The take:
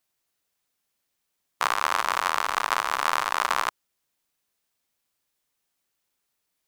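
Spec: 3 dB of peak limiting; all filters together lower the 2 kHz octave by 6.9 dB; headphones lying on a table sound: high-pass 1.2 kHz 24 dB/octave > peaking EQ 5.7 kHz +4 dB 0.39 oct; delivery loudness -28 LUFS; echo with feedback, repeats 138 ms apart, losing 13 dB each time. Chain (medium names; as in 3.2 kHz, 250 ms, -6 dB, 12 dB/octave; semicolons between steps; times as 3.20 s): peaking EQ 2 kHz -9 dB; peak limiter -9.5 dBFS; high-pass 1.2 kHz 24 dB/octave; peaking EQ 5.7 kHz +4 dB 0.39 oct; feedback delay 138 ms, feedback 22%, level -13 dB; trim +4 dB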